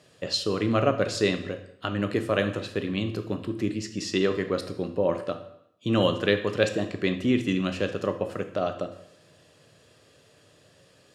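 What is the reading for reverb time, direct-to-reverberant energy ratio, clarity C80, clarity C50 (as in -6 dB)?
0.75 s, 7.5 dB, 14.0 dB, 10.5 dB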